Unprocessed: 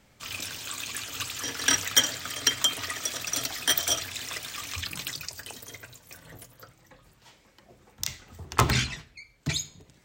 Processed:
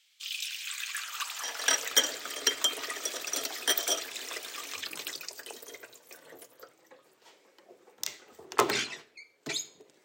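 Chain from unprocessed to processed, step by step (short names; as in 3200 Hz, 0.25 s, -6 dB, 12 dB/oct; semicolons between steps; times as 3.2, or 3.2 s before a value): high-pass sweep 3200 Hz -> 400 Hz, 0.36–1.96; gain -3.5 dB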